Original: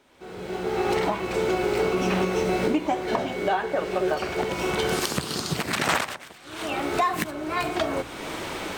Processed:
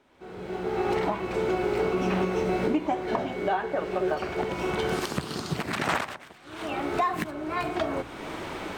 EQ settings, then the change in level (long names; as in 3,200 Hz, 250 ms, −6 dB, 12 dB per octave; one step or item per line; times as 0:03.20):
parametric band 510 Hz −2.5 dB 0.29 octaves
high-shelf EQ 3,200 Hz −9.5 dB
−1.5 dB